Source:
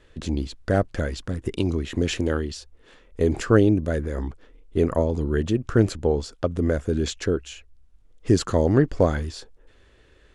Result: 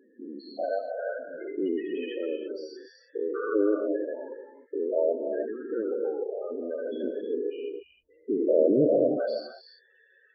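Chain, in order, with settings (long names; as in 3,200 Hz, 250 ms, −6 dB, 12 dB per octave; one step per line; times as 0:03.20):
spectrum averaged block by block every 200 ms
high-pass filter 680 Hz 12 dB per octave
0:01.41–0:01.82: leveller curve on the samples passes 2
0:07.03–0:09.19: spectral tilt −4 dB per octave
spectral peaks only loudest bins 8
reverb whose tail is shaped and stops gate 340 ms rising, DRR 5.5 dB
level +7.5 dB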